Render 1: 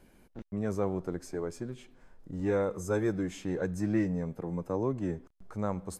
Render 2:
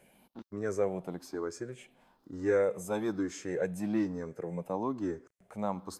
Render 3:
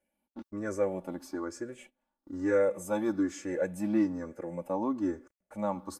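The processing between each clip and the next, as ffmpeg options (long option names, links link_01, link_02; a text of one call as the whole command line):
ffmpeg -i in.wav -af "afftfilt=real='re*pow(10,10/40*sin(2*PI*(0.5*log(max(b,1)*sr/1024/100)/log(2)-(1.1)*(pts-256)/sr)))':imag='im*pow(10,10/40*sin(2*PI*(0.5*log(max(b,1)*sr/1024/100)/log(2)-(1.1)*(pts-256)/sr)))':win_size=1024:overlap=0.75,highpass=frequency=310:poles=1" out.wav
ffmpeg -i in.wav -af "agate=range=-21dB:threshold=-54dB:ratio=16:detection=peak,equalizer=frequency=4100:width_type=o:width=1.3:gain=-4,aecho=1:1:3.5:0.75" out.wav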